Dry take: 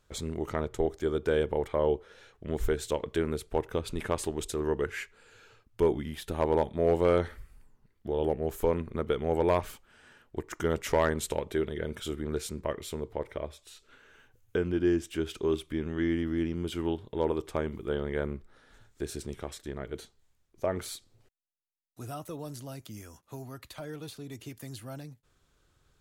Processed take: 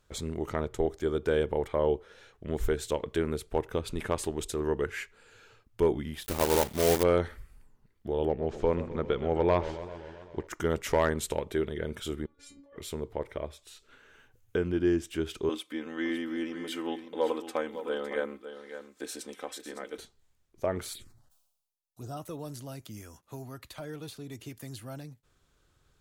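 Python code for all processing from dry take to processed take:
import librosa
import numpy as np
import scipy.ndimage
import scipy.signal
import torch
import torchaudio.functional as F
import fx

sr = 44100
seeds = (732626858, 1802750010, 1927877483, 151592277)

y = fx.chain(x, sr, fx.block_float(bits=3),
    fx.high_shelf(hz=7000.0, db=8.5), at=(6.24, 7.04))
y = fx.chain(y, sr, fx.lowpass(hz=5600.0, slope=24),
    fx.echo_warbled(ms=131, feedback_pct=70, rate_hz=2.8, cents=179, wet_db=-14.0), at=(8.25, 10.47))
y = fx.chain(y, sr, fx.lowpass(hz=7300.0, slope=12),
    fx.over_compress(threshold_db=-38.0, ratio=-0.5),
    fx.stiff_resonator(f0_hz=280.0, decay_s=0.3, stiffness=0.002), at=(12.26, 12.76))
y = fx.chain(y, sr, fx.highpass(hz=380.0, slope=12),
    fx.comb(ms=3.9, depth=0.82),
    fx.echo_single(ms=559, db=-11.0), at=(15.49, 19.98))
y = fx.chain(y, sr, fx.env_phaser(low_hz=300.0, high_hz=2300.0, full_db=-38.0),
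    fx.doubler(ms=14.0, db=-13.5),
    fx.sustainer(db_per_s=62.0), at=(20.93, 22.17))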